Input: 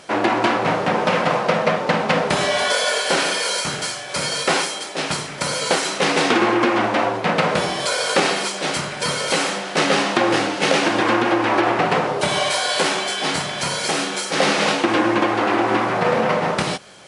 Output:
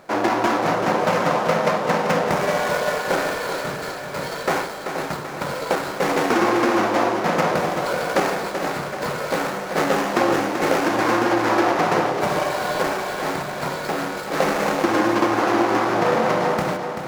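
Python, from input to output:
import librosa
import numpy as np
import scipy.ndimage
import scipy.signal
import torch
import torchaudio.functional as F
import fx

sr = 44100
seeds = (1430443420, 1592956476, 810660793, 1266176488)

p1 = scipy.signal.medfilt(x, 15)
p2 = fx.low_shelf(p1, sr, hz=330.0, db=-3.0)
y = p2 + fx.echo_feedback(p2, sr, ms=385, feedback_pct=52, wet_db=-8.0, dry=0)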